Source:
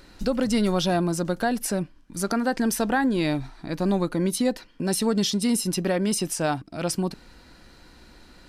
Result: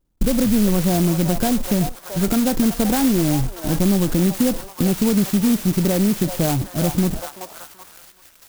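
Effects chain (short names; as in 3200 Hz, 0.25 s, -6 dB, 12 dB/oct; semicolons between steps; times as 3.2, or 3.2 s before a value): zero-crossing step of -28.5 dBFS; gate -29 dBFS, range -50 dB; low shelf 230 Hz +12 dB; on a send: delay with a stepping band-pass 0.381 s, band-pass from 840 Hz, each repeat 0.7 oct, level -6 dB; on the sum: compressor 2:1, threshold -27 dBFS, peak gain reduction 9 dB; high shelf 3400 Hz -9.5 dB; clock jitter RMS 0.14 ms; gain +6.5 dB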